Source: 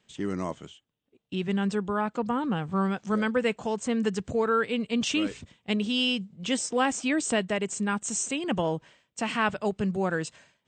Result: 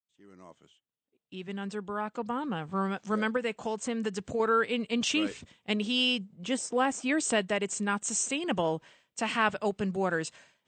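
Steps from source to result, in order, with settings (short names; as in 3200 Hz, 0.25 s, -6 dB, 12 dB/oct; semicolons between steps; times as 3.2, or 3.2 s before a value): opening faded in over 3.41 s; low shelf 190 Hz -8 dB; 3.36–4.4 compressor 2.5:1, threshold -29 dBFS, peak gain reduction 5.5 dB; 6.18–7.09 bell 4200 Hz -6.5 dB 2.5 oct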